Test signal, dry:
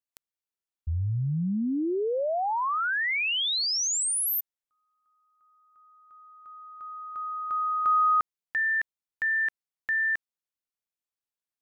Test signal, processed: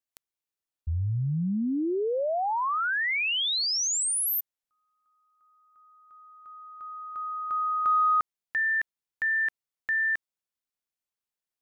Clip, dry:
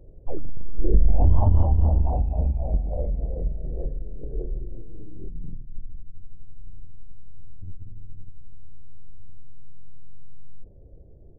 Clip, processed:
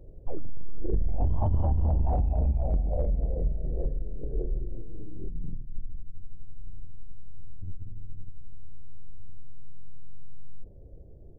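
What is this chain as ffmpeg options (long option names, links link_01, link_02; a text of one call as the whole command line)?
ffmpeg -i in.wav -af "acompressor=threshold=-20dB:ratio=6:attack=1.8:release=30:knee=1:detection=rms" out.wav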